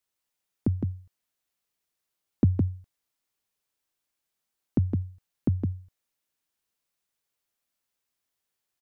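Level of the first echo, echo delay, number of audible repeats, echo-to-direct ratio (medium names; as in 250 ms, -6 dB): -4.5 dB, 162 ms, 1, -4.5 dB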